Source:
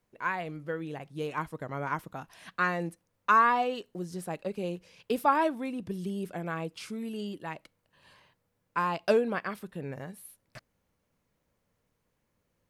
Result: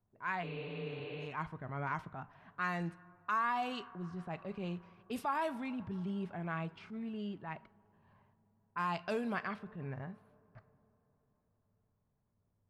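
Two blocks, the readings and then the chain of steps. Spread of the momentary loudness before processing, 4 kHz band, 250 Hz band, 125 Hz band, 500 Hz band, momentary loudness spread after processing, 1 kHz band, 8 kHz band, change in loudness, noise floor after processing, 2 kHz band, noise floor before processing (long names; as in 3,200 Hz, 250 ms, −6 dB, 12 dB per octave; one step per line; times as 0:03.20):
16 LU, −5.5 dB, −5.5 dB, −2.5 dB, −10.5 dB, 11 LU, −9.0 dB, −13.0 dB, −8.5 dB, −79 dBFS, −7.5 dB, −78 dBFS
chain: coupled-rooms reverb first 0.38 s, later 4.7 s, from −19 dB, DRR 15.5 dB
low-pass that shuts in the quiet parts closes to 830 Hz, open at −23.5 dBFS
thirty-one-band graphic EQ 100 Hz +9 dB, 315 Hz −8 dB, 500 Hz −12 dB
downward compressor 6 to 1, threshold −27 dBFS, peak gain reduction 9 dB
transient designer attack −6 dB, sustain +1 dB
healed spectral selection 0:00.46–0:01.24, 270–4,800 Hz after
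level −2 dB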